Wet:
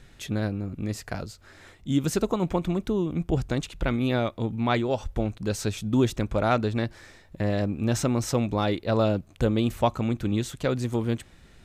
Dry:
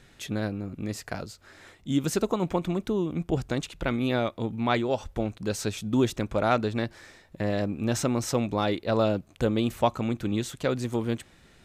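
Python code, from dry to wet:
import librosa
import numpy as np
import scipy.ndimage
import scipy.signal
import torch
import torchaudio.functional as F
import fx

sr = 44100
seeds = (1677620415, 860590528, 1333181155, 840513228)

y = fx.low_shelf(x, sr, hz=100.0, db=9.5)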